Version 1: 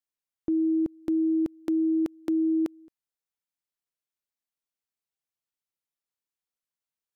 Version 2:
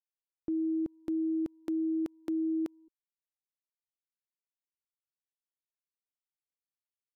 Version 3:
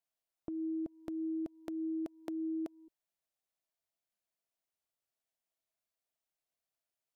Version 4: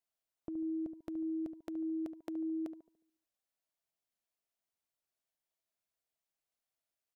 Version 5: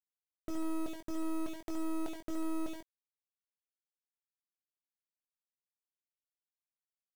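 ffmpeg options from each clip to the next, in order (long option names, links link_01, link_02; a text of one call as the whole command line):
ffmpeg -i in.wav -af "anlmdn=0.0251,volume=-6.5dB" out.wav
ffmpeg -i in.wav -af "equalizer=frequency=660:width_type=o:width=0.33:gain=12,acompressor=threshold=-38dB:ratio=6,alimiter=level_in=7dB:limit=-24dB:level=0:latency=1:release=160,volume=-7dB,volume=2.5dB" out.wav
ffmpeg -i in.wav -filter_complex "[0:a]asplit=2[link_01][link_02];[link_02]adelay=72,lowpass=frequency=1000:poles=1,volume=-9dB,asplit=2[link_03][link_04];[link_04]adelay=72,lowpass=frequency=1000:poles=1,volume=0.48,asplit=2[link_05][link_06];[link_06]adelay=72,lowpass=frequency=1000:poles=1,volume=0.48,asplit=2[link_07][link_08];[link_08]adelay=72,lowpass=frequency=1000:poles=1,volume=0.48,asplit=2[link_09][link_10];[link_10]adelay=72,lowpass=frequency=1000:poles=1,volume=0.48[link_11];[link_01][link_03][link_05][link_07][link_09][link_11]amix=inputs=6:normalize=0,volume=-1.5dB" out.wav
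ffmpeg -i in.wav -filter_complex "[0:a]acrusher=bits=6:dc=4:mix=0:aa=0.000001,asoftclip=type=tanh:threshold=-36.5dB,asplit=2[link_01][link_02];[link_02]adelay=21,volume=-7dB[link_03];[link_01][link_03]amix=inputs=2:normalize=0,volume=8dB" out.wav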